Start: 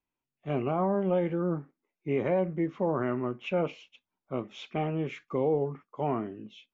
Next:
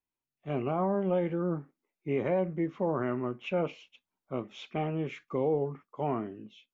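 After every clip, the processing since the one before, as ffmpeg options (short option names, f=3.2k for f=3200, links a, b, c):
-af "dynaudnorm=f=120:g=7:m=4.5dB,volume=-6dB"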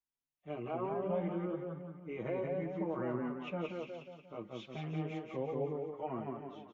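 -filter_complex "[0:a]asplit=2[a][b];[b]aecho=0:1:179|358|537|716|895|1074|1253:0.668|0.334|0.167|0.0835|0.0418|0.0209|0.0104[c];[a][c]amix=inputs=2:normalize=0,asplit=2[d][e];[e]adelay=5.8,afreqshift=1.3[f];[d][f]amix=inputs=2:normalize=1,volume=-5.5dB"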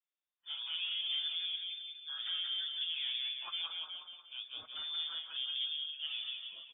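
-af "asoftclip=type=tanh:threshold=-29dB,lowpass=f=3.1k:t=q:w=0.5098,lowpass=f=3.1k:t=q:w=0.6013,lowpass=f=3.1k:t=q:w=0.9,lowpass=f=3.1k:t=q:w=2.563,afreqshift=-3700"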